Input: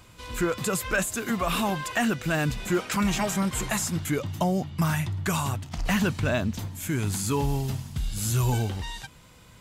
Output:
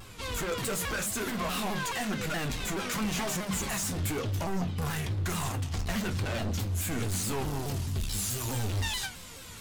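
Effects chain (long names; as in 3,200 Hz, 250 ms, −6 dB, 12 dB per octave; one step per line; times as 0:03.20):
high-shelf EQ 2,700 Hz +2.5 dB, from 0:08.00 +10 dB
brickwall limiter −20 dBFS, peak gain reduction 9.5 dB
flanger 0.47 Hz, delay 9.9 ms, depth 2.9 ms, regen +62%
hard clipping −38 dBFS, distortion −6 dB
convolution reverb RT60 0.30 s, pre-delay 3 ms, DRR 6 dB
pitch modulation by a square or saw wave saw down 4.7 Hz, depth 160 cents
level +7 dB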